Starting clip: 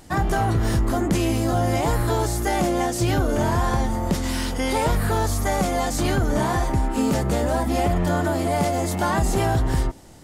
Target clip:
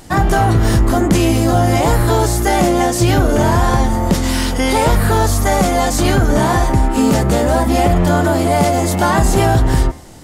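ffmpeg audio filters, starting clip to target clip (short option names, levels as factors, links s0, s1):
-af "bandreject=f=75.52:t=h:w=4,bandreject=f=151.04:t=h:w=4,bandreject=f=226.56:t=h:w=4,bandreject=f=302.08:t=h:w=4,bandreject=f=377.6:t=h:w=4,bandreject=f=453.12:t=h:w=4,bandreject=f=528.64:t=h:w=4,bandreject=f=604.16:t=h:w=4,bandreject=f=679.68:t=h:w=4,bandreject=f=755.2:t=h:w=4,bandreject=f=830.72:t=h:w=4,bandreject=f=906.24:t=h:w=4,bandreject=f=981.76:t=h:w=4,bandreject=f=1057.28:t=h:w=4,bandreject=f=1132.8:t=h:w=4,bandreject=f=1208.32:t=h:w=4,bandreject=f=1283.84:t=h:w=4,bandreject=f=1359.36:t=h:w=4,bandreject=f=1434.88:t=h:w=4,bandreject=f=1510.4:t=h:w=4,bandreject=f=1585.92:t=h:w=4,bandreject=f=1661.44:t=h:w=4,bandreject=f=1736.96:t=h:w=4,bandreject=f=1812.48:t=h:w=4,bandreject=f=1888:t=h:w=4,bandreject=f=1963.52:t=h:w=4,bandreject=f=2039.04:t=h:w=4,bandreject=f=2114.56:t=h:w=4,bandreject=f=2190.08:t=h:w=4,bandreject=f=2265.6:t=h:w=4,bandreject=f=2341.12:t=h:w=4,bandreject=f=2416.64:t=h:w=4,bandreject=f=2492.16:t=h:w=4,bandreject=f=2567.68:t=h:w=4,bandreject=f=2643.2:t=h:w=4,volume=2.66"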